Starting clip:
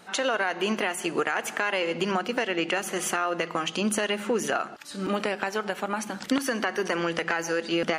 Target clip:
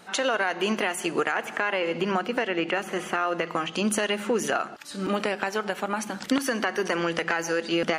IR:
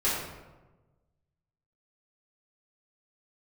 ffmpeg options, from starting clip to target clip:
-filter_complex "[0:a]asettb=1/sr,asplit=3[s0][s1][s2];[s0]atrim=end=1.324[s3];[s1]atrim=start=1.32:end=3.76,asetpts=PTS-STARTPTS,afade=t=in:d=0.004:c=qsin,afade=t=out:st=2.436:d=0.004:c=qsin,acrossover=split=3100[s4][s5];[s5]acompressor=threshold=0.00501:ratio=4:attack=1:release=60[s6];[s4][s6]amix=inputs=2:normalize=0[s7];[s2]atrim=start=3.756[s8];[s3][s7]acrossfade=d=0.004:c1=hsin:c2=qsin[s9];[s9][s8]acrossfade=d=0.004:c1=qsin:c2=hsin,volume=1.12"

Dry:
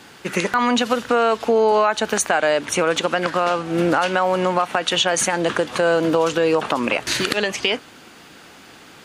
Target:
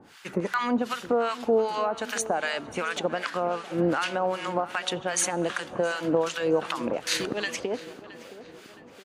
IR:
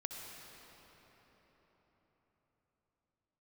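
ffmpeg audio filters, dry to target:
-filter_complex "[0:a]acrossover=split=970[s0][s1];[s0]aeval=exprs='val(0)*(1-1/2+1/2*cos(2*PI*2.6*n/s))':c=same[s2];[s1]aeval=exprs='val(0)*(1-1/2-1/2*cos(2*PI*2.6*n/s))':c=same[s3];[s2][s3]amix=inputs=2:normalize=0,asplit=2[s4][s5];[s5]adelay=669,lowpass=f=2700:p=1,volume=0.168,asplit=2[s6][s7];[s7]adelay=669,lowpass=f=2700:p=1,volume=0.54,asplit=2[s8][s9];[s9]adelay=669,lowpass=f=2700:p=1,volume=0.54,asplit=2[s10][s11];[s11]adelay=669,lowpass=f=2700:p=1,volume=0.54,asplit=2[s12][s13];[s13]adelay=669,lowpass=f=2700:p=1,volume=0.54[s14];[s4][s6][s8][s10][s12][s14]amix=inputs=6:normalize=0,asplit=2[s15][s16];[1:a]atrim=start_sample=2205[s17];[s16][s17]afir=irnorm=-1:irlink=0,volume=0.112[s18];[s15][s18]amix=inputs=2:normalize=0,volume=0.596"

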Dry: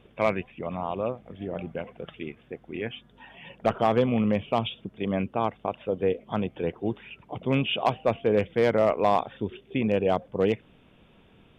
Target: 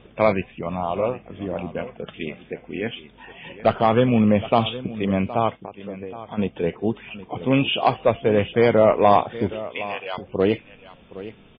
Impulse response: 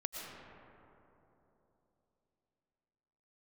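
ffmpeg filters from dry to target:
-filter_complex "[0:a]asettb=1/sr,asplit=3[s0][s1][s2];[s0]atrim=end=2.114[s3];[s1]atrim=start=2.11:end=2.61,asetpts=PTS-STARTPTS,afade=t=in:d=0.004:c=qsin,afade=t=out:st=0.496:d=0.004:c=qsin,adynamicequalizer=threshold=0.00126:dfrequency=4300:dqfactor=0.78:tfrequency=4300:tqfactor=0.78:attack=5:release=100:ratio=0.375:range=3:mode=boostabove:tftype=bell[s4];[s2]atrim=start=2.606[s5];[s3][s4]acrossfade=d=0.004:c1=hsin:c2=qsin[s6];[s6][s5]acrossfade=d=0.004:c1=qsin:c2=hsin,asplit=3[s7][s8][s9];[s7]afade=t=out:st=5.55:d=0.02[s10];[s8]acompressor=threshold=0.0141:ratio=6,afade=t=in:st=5.55:d=0.02,afade=t=out:st=6.37:d=0.02[s11];[s9]afade=t=in:st=6.37:d=0.02[s12];[s10][s11][s12]amix=inputs=3:normalize=0,asettb=1/sr,asplit=3[s13][s14][s15];[s13]atrim=end=9.654[s16];[s14]atrim=start=9.65:end=10.18,asetpts=PTS-STARTPTS,afade=t=in:d=0.004:c=qsin,afade=t=out:st=0.526:d=0.004:c=qsin,highpass=1300[s17];[s15]atrim=start=10.176[s18];[s16][s17]acrossfade=d=0.004:c1=hsin:c2=qsin[s19];[s19][s18]acrossfade=d=0.004:c1=qsin:c2=hsin,aphaser=in_gain=1:out_gain=1:delay=4.7:decay=0.21:speed=0.22:type=sinusoidal,aecho=1:1:767:0.168,volume=1.88" -ar 11025 -c:a libmp3lame -b:a 16k

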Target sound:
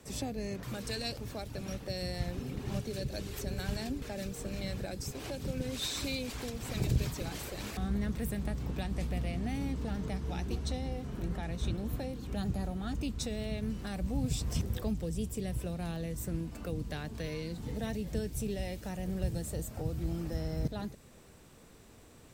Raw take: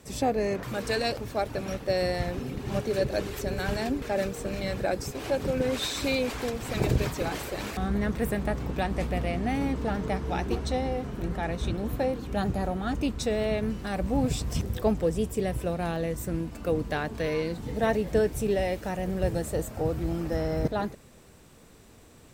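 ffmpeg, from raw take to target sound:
-filter_complex "[0:a]acrossover=split=230|3000[s0][s1][s2];[s1]acompressor=threshold=0.01:ratio=4[s3];[s0][s3][s2]amix=inputs=3:normalize=0,volume=0.708"

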